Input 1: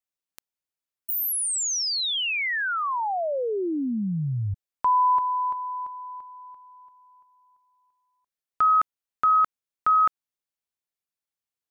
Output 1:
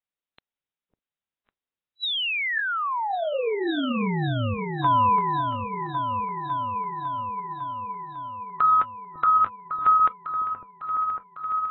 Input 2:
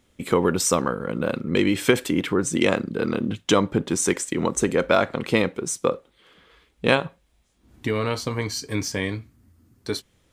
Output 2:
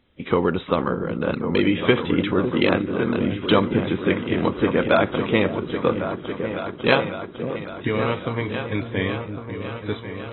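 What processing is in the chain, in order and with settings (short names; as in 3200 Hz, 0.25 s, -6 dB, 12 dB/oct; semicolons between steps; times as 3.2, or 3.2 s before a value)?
on a send: repeats that get brighter 0.552 s, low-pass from 400 Hz, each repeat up 2 oct, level -6 dB; on the sum: AAC 16 kbps 24000 Hz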